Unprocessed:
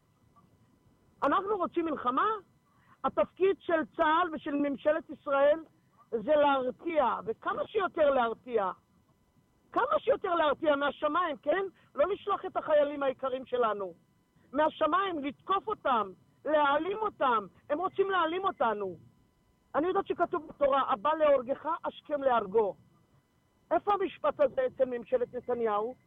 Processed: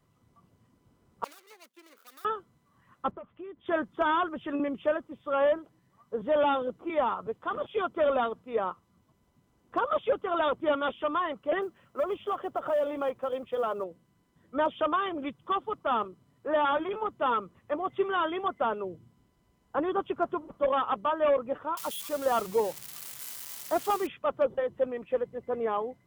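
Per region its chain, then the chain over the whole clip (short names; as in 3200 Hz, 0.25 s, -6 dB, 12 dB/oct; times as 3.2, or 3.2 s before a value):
1.24–2.25 median filter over 41 samples + HPF 180 Hz 24 dB/oct + differentiator
3.11–3.66 compressor 16:1, threshold -38 dBFS + air absorption 330 m
11.62–13.84 bell 630 Hz +4.5 dB 1.4 oct + compressor 2.5:1, threshold -27 dBFS + companded quantiser 8-bit
21.77–24.07 switching spikes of -29 dBFS + mismatched tape noise reduction encoder only
whole clip: dry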